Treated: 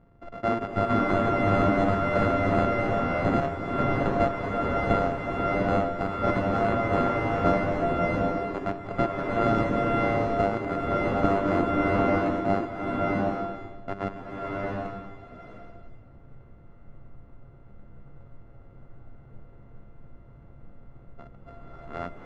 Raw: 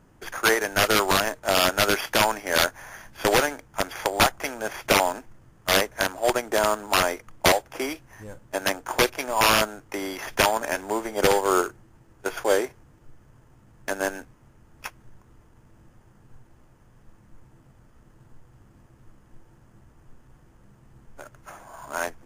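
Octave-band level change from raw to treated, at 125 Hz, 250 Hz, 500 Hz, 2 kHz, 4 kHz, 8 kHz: +9.0 dB, +6.0 dB, −0.5 dB, −7.0 dB, −18.5 dB, below −25 dB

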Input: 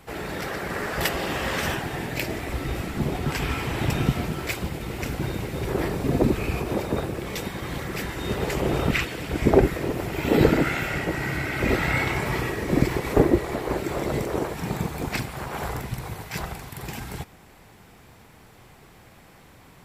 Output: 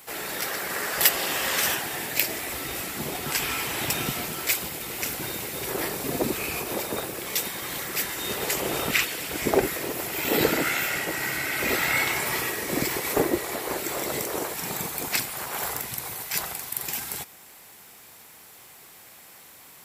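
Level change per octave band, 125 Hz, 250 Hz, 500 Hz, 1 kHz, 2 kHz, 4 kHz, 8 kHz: −12.5, −7.0, −4.0, −1.0, +1.5, +5.0, +11.0 decibels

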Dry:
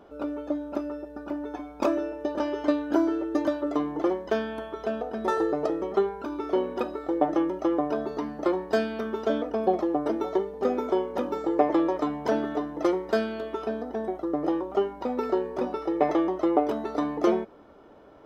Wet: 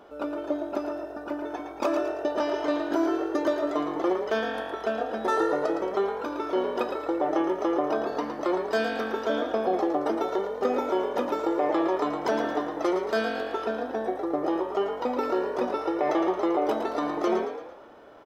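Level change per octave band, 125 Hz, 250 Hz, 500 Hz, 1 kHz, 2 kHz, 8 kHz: −4.5 dB, −2.0 dB, +0.5 dB, +2.0 dB, +4.5 dB, can't be measured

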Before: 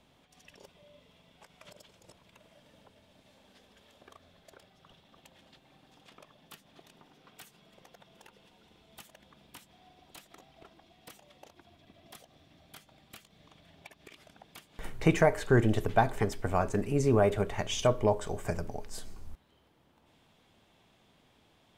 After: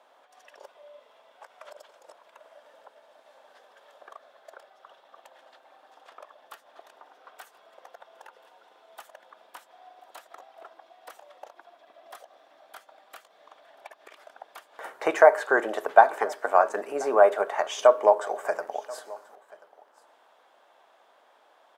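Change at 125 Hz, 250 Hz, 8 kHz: below −30 dB, −8.0 dB, −1.0 dB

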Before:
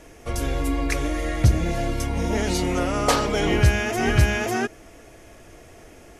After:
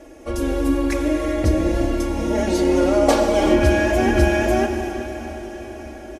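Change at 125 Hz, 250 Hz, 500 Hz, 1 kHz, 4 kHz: −2.0, +7.0, +7.5, +3.0, −1.0 decibels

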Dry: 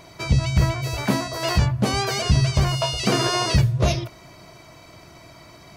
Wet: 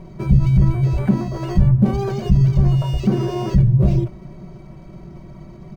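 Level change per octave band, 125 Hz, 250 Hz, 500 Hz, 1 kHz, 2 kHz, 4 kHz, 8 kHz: +6.0 dB, +6.5 dB, 0.0 dB, −5.5 dB, below −10 dB, −15.0 dB, below −15 dB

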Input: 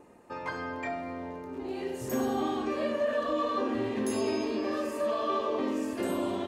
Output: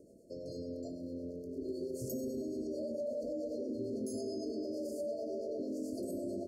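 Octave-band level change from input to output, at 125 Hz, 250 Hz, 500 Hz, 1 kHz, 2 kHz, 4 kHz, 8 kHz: −5.0 dB, −7.0 dB, −7.0 dB, below −25 dB, below −40 dB, −13.0 dB, −6.5 dB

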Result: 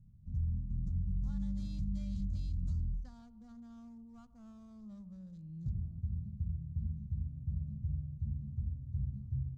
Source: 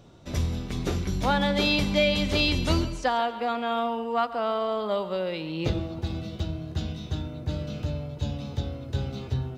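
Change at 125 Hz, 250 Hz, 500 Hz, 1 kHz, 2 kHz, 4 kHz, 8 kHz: −7.0 dB, −14.5 dB, below −40 dB, −40.0 dB, below −40 dB, below −35 dB, below −25 dB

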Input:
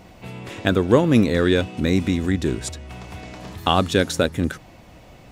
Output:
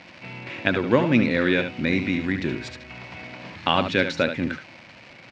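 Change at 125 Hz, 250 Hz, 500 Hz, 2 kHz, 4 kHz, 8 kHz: −6.0 dB, −3.0 dB, −4.0 dB, +3.0 dB, −2.0 dB, below −10 dB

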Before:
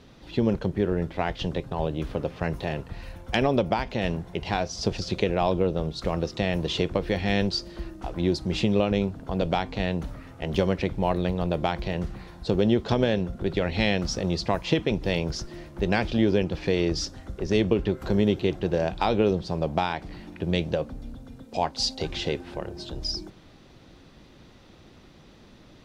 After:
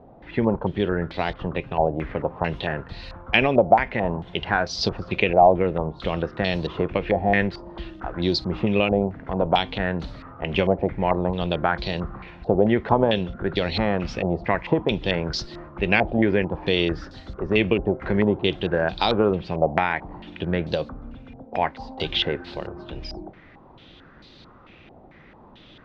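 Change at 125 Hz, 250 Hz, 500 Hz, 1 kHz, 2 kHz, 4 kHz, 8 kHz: +0.5 dB, +1.5 dB, +3.5 dB, +6.5 dB, +7.0 dB, +3.0 dB, can't be measured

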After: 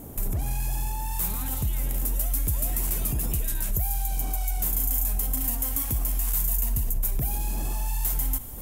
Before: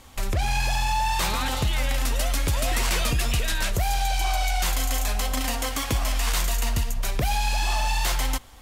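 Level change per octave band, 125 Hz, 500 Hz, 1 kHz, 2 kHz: −2.5, −10.0, −13.0, −16.0 decibels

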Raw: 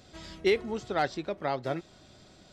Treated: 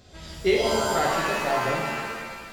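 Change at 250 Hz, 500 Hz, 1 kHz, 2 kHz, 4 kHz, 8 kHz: +4.5, +6.0, +8.5, +9.5, +9.0, +18.0 decibels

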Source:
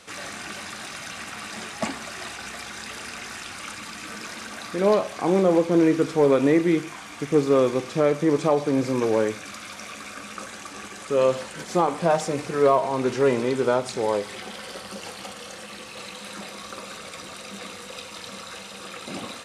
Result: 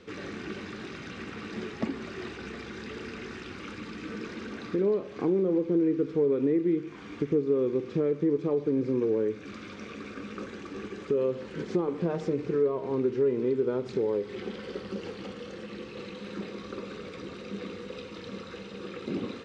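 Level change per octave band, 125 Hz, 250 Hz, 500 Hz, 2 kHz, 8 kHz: −5.0 dB, −4.0 dB, −5.5 dB, −9.5 dB, below −15 dB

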